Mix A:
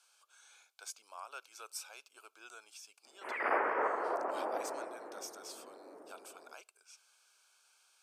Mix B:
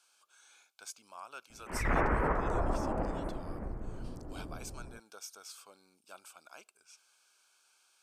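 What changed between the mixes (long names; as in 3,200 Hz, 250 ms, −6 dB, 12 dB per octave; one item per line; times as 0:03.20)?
background: entry −1.55 s
master: remove high-pass filter 400 Hz 24 dB per octave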